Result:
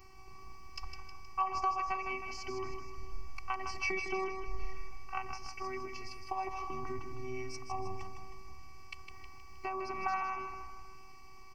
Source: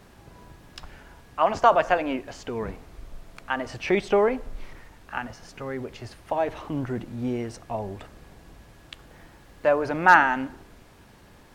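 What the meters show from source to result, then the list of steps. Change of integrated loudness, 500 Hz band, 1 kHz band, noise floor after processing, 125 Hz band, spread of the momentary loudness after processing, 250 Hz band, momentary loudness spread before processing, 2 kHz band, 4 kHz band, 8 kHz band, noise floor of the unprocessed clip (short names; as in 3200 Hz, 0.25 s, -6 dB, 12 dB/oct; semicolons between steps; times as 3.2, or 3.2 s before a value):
-14.5 dB, -17.5 dB, -11.5 dB, -49 dBFS, -13.0 dB, 19 LU, -17.0 dB, 19 LU, -15.0 dB, -8.5 dB, -5.0 dB, -52 dBFS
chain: ripple EQ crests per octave 0.88, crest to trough 10 dB; compressor 4:1, threshold -27 dBFS, peak gain reduction 15 dB; robotiser 380 Hz; fixed phaser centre 2500 Hz, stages 8; on a send: feedback echo 0.157 s, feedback 52%, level -7 dB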